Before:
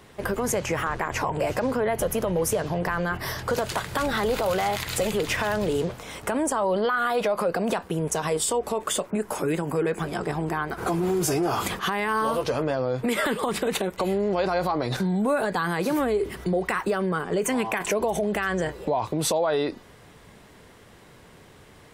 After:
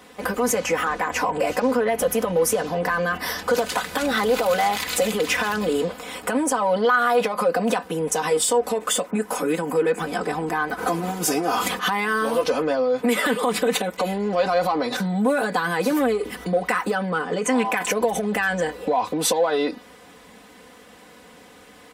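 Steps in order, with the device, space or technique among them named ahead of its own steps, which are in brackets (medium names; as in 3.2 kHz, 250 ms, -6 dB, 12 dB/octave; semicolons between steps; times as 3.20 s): parallel distortion (in parallel at -10 dB: hard clipper -25 dBFS, distortion -9 dB); 5.60–6.29 s: on the sum: band-stop 6 kHz, Q 6.4; 16.95–17.65 s: low-pass 7.6 kHz 12 dB/octave; high-pass 210 Hz 6 dB/octave; comb 4 ms, depth 90%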